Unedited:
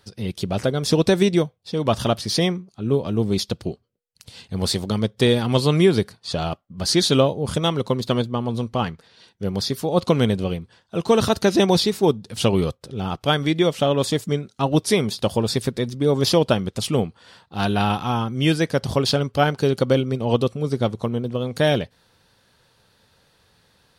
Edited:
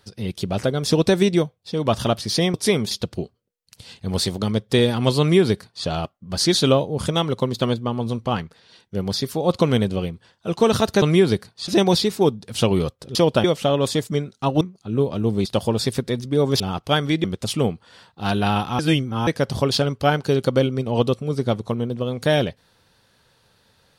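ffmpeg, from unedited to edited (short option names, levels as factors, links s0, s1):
-filter_complex "[0:a]asplit=13[s0][s1][s2][s3][s4][s5][s6][s7][s8][s9][s10][s11][s12];[s0]atrim=end=2.542[s13];[s1]atrim=start=14.778:end=15.152[s14];[s2]atrim=start=3.388:end=11.502[s15];[s3]atrim=start=5.678:end=6.342[s16];[s4]atrim=start=11.498:end=12.972[s17];[s5]atrim=start=16.288:end=16.582[s18];[s6]atrim=start=13.608:end=14.782[s19];[s7]atrim=start=2.538:end=3.392[s20];[s8]atrim=start=15.148:end=16.292[s21];[s9]atrim=start=12.968:end=13.612[s22];[s10]atrim=start=16.578:end=18.132[s23];[s11]atrim=start=18.128:end=18.612,asetpts=PTS-STARTPTS,areverse[s24];[s12]atrim=start=18.608[s25];[s13][s14]acrossfade=d=0.004:c1=hsin:c2=hsin[s26];[s26][s15]acrossfade=d=0.004:c1=hsin:c2=hsin[s27];[s27][s16]acrossfade=d=0.004:c1=hsin:c2=hsin[s28];[s28][s17]acrossfade=d=0.004:c1=hsin:c2=hsin[s29];[s29][s18]acrossfade=d=0.004:c1=hsin:c2=hsin[s30];[s30][s19]acrossfade=d=0.004:c1=hsin:c2=hsin[s31];[s31][s20]acrossfade=d=0.004:c1=hsin:c2=hsin[s32];[s32][s21]acrossfade=d=0.004:c1=hsin:c2=hsin[s33];[s33][s22]acrossfade=d=0.004:c1=hsin:c2=hsin[s34];[s34][s23]acrossfade=d=0.004:c1=hsin:c2=hsin[s35];[s35][s24]acrossfade=d=0.004:c1=hsin:c2=hsin[s36];[s36][s25]acrossfade=d=0.004:c1=hsin:c2=hsin"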